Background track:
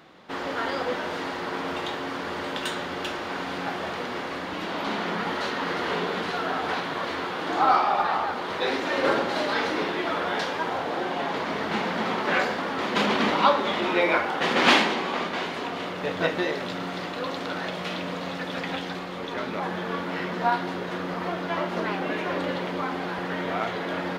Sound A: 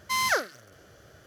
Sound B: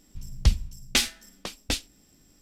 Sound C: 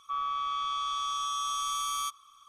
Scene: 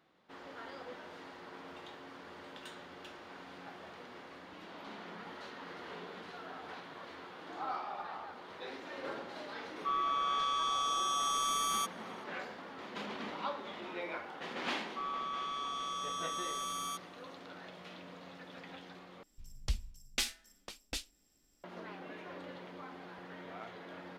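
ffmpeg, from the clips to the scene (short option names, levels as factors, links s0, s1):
-filter_complex "[3:a]asplit=2[s0][s1];[0:a]volume=0.112[s2];[2:a]equalizer=f=130:t=o:w=2.1:g=-8.5[s3];[s2]asplit=2[s4][s5];[s4]atrim=end=19.234[s6];[s3]atrim=end=2.41,asetpts=PTS-STARTPTS,volume=0.282[s7];[s5]atrim=start=21.636[s8];[s0]atrim=end=2.48,asetpts=PTS-STARTPTS,volume=0.891,afade=t=in:d=0.004:c=hsin,afade=t=out:st=2.476:d=0.004:c=hsin,adelay=9760[s9];[s1]atrim=end=2.48,asetpts=PTS-STARTPTS,volume=0.447,afade=t=in:d=0.004:c=hsin,afade=t=out:st=2.476:d=0.004:c=hsin,adelay=14870[s10];[s6][s7]acrossfade=d=0.004:c1=hsin:c2=hsin[s11];[s11][s8]acrossfade=d=0.004:c1=hsin:c2=hsin[s12];[s12][s9][s10]amix=inputs=3:normalize=0"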